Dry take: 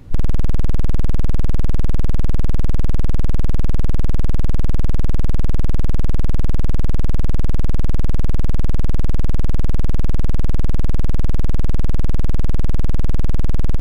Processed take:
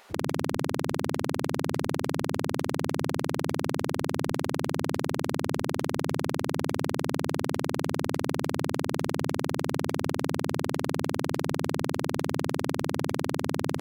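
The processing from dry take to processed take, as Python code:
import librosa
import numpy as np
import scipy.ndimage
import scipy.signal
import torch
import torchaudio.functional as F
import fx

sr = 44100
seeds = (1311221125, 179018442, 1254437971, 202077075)

y = fx.hum_notches(x, sr, base_hz=50, count=5)
y = fx.spec_gate(y, sr, threshold_db=-30, keep='weak')
y = y * 10.0 ** (5.0 / 20.0)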